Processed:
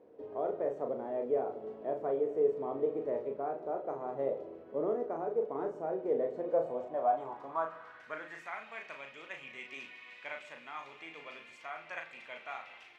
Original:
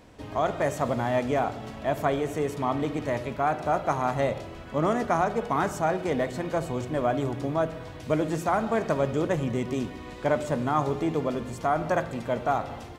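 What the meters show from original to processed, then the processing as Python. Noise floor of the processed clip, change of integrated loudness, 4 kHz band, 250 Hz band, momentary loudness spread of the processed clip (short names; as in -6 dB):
-55 dBFS, -9.0 dB, under -10 dB, -15.0 dB, 14 LU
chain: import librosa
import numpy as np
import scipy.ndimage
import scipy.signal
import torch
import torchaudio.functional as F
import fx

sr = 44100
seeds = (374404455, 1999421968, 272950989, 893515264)

y = fx.rider(x, sr, range_db=3, speed_s=0.5)
y = fx.doubler(y, sr, ms=37.0, db=-5.5)
y = fx.filter_sweep_bandpass(y, sr, from_hz=440.0, to_hz=2400.0, start_s=6.33, end_s=8.69, q=4.0)
y = fx.low_shelf(y, sr, hz=96.0, db=-7.5)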